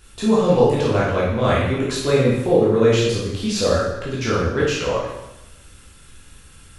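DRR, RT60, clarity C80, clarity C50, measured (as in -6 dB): -7.0 dB, 0.95 s, 4.5 dB, 1.0 dB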